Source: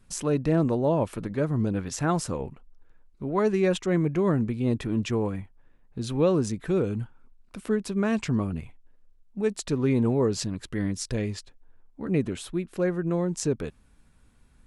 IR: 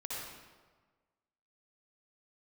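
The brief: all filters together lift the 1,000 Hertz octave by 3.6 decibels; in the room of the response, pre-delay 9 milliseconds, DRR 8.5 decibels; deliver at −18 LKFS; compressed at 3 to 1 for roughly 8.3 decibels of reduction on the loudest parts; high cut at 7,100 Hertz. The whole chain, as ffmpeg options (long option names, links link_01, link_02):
-filter_complex "[0:a]lowpass=7100,equalizer=frequency=1000:width_type=o:gain=4.5,acompressor=threshold=-29dB:ratio=3,asplit=2[link_01][link_02];[1:a]atrim=start_sample=2205,adelay=9[link_03];[link_02][link_03]afir=irnorm=-1:irlink=0,volume=-10dB[link_04];[link_01][link_04]amix=inputs=2:normalize=0,volume=14.5dB"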